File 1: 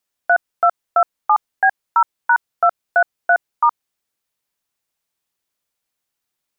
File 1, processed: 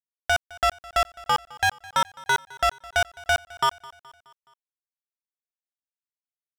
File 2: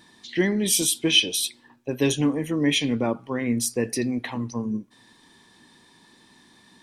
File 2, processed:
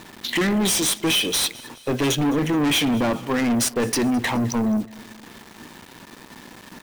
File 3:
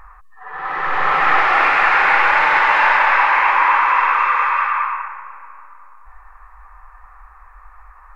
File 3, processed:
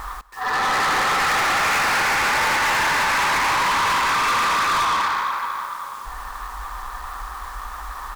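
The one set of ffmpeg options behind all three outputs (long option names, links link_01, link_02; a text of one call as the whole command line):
ffmpeg -i in.wav -filter_complex "[0:a]highpass=frequency=48:poles=1,highshelf=frequency=4100:gain=6,asplit=2[link_01][link_02];[link_02]acompressor=threshold=-24dB:ratio=6,volume=2.5dB[link_03];[link_01][link_03]amix=inputs=2:normalize=0,alimiter=limit=-6.5dB:level=0:latency=1:release=249,adynamicsmooth=sensitivity=4:basefreq=1400,acrusher=bits=7:mix=0:aa=0.000001,asoftclip=type=tanh:threshold=-24.5dB,aecho=1:1:211|422|633|844:0.0841|0.0446|0.0236|0.0125,volume=6.5dB" out.wav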